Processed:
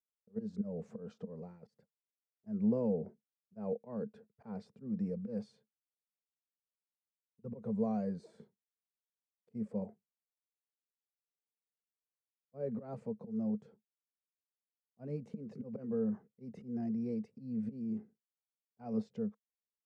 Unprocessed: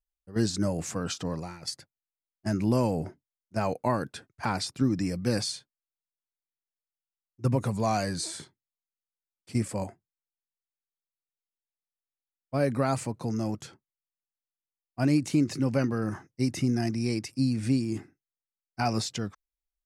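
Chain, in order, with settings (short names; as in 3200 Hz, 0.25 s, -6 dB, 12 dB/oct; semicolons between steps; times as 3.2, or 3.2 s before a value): auto swell 0.166 s; double band-pass 310 Hz, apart 1.1 oct; gain +1 dB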